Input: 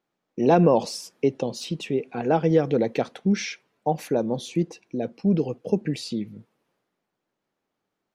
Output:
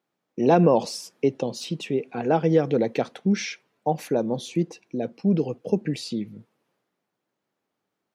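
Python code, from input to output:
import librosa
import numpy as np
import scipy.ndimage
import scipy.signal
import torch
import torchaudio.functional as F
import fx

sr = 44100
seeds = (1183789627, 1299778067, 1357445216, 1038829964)

y = scipy.signal.sosfilt(scipy.signal.butter(2, 76.0, 'highpass', fs=sr, output='sos'), x)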